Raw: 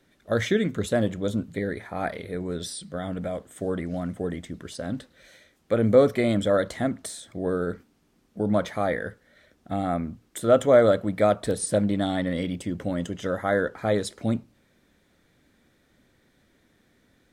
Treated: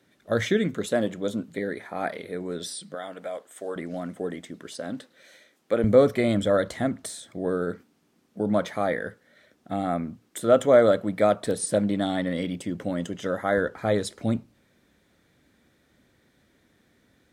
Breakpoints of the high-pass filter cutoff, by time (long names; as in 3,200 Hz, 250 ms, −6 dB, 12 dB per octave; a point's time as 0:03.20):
90 Hz
from 0:00.74 200 Hz
from 0:02.95 510 Hz
from 0:03.76 230 Hz
from 0:05.84 59 Hz
from 0:07.27 130 Hz
from 0:13.58 44 Hz